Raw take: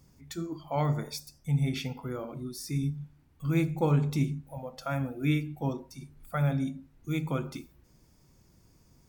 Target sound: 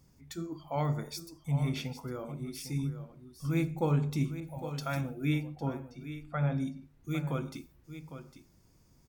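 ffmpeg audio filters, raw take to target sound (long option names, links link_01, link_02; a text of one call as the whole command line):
ffmpeg -i in.wav -filter_complex "[0:a]asplit=3[link_01][link_02][link_03];[link_01]afade=type=out:start_time=5.55:duration=0.02[link_04];[link_02]lowpass=3400,afade=type=in:start_time=5.55:duration=0.02,afade=type=out:start_time=6.55:duration=0.02[link_05];[link_03]afade=type=in:start_time=6.55:duration=0.02[link_06];[link_04][link_05][link_06]amix=inputs=3:normalize=0,asplit=2[link_07][link_08];[link_08]aecho=0:1:805:0.266[link_09];[link_07][link_09]amix=inputs=2:normalize=0,asettb=1/sr,asplit=3[link_10][link_11][link_12];[link_10]atrim=end=4.404[link_13];[link_11]atrim=start=4.4:end=5.01,asetpts=PTS-STARTPTS,afade=type=in:duration=0.004:curve=qsin,afade=type=out:start_time=0.606:duration=0.004:curve=qsin,adynamicequalizer=threshold=0.00398:dfrequency=1800:dqfactor=0.7:tfrequency=1800:tqfactor=0.7:attack=5:release=100:ratio=0.375:range=3.5:mode=boostabove:tftype=highshelf[link_14];[link_12]atrim=start=5.006[link_15];[link_13][link_14]acrossfade=duration=0.004:curve1=hsin:curve2=qsin[link_16];[link_16][link_15]acrossfade=duration=0.004:curve1=qsin:curve2=hsin,volume=-3dB" out.wav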